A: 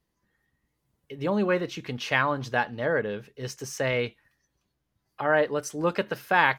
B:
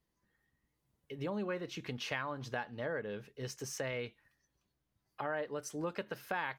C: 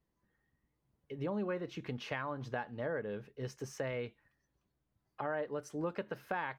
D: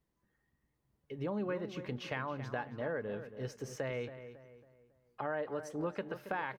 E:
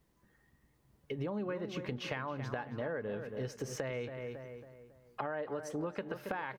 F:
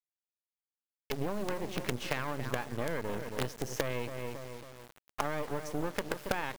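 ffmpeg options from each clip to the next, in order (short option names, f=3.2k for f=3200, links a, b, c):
-af "acompressor=threshold=-32dB:ratio=3,volume=-5dB"
-af "highshelf=f=2.6k:g=-11.5,volume=1.5dB"
-filter_complex "[0:a]asplit=2[a][b];[b]adelay=275,lowpass=f=2.4k:p=1,volume=-11dB,asplit=2[c][d];[d]adelay=275,lowpass=f=2.4k:p=1,volume=0.41,asplit=2[e][f];[f]adelay=275,lowpass=f=2.4k:p=1,volume=0.41,asplit=2[g][h];[h]adelay=275,lowpass=f=2.4k:p=1,volume=0.41[i];[a][c][e][g][i]amix=inputs=5:normalize=0"
-af "acompressor=threshold=-46dB:ratio=4,volume=9.5dB"
-af "acrusher=bits=6:dc=4:mix=0:aa=0.000001,volume=6dB"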